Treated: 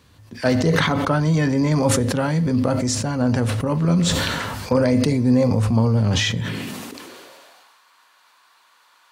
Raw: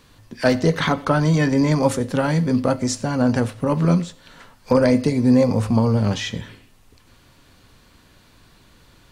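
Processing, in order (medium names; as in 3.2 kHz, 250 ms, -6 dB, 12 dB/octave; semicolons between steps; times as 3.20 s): high-pass sweep 75 Hz -> 1 kHz, 6.12–7.76 s; decay stretcher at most 23 dB/s; trim -3 dB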